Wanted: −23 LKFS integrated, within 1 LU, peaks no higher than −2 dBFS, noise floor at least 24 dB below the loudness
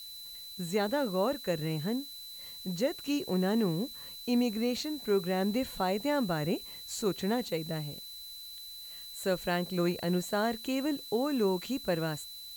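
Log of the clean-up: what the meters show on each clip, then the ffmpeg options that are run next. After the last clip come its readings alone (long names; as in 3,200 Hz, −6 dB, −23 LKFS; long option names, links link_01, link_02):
interfering tone 4,000 Hz; level of the tone −44 dBFS; background noise floor −46 dBFS; target noise floor −57 dBFS; integrated loudness −32.5 LKFS; sample peak −17.5 dBFS; target loudness −23.0 LKFS
→ -af "bandreject=frequency=4000:width=30"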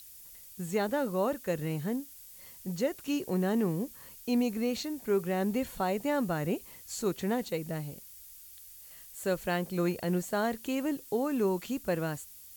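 interfering tone none found; background noise floor −51 dBFS; target noise floor −56 dBFS
→ -af "afftdn=noise_reduction=6:noise_floor=-51"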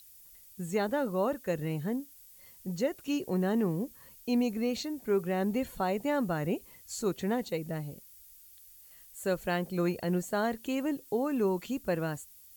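background noise floor −55 dBFS; target noise floor −56 dBFS
→ -af "afftdn=noise_reduction=6:noise_floor=-55"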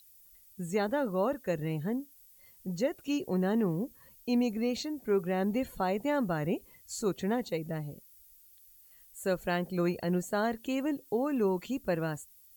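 background noise floor −59 dBFS; integrated loudness −32.0 LKFS; sample peak −17.5 dBFS; target loudness −23.0 LKFS
→ -af "volume=9dB"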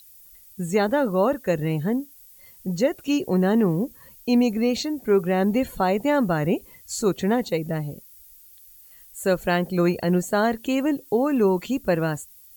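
integrated loudness −23.0 LKFS; sample peak −8.5 dBFS; background noise floor −50 dBFS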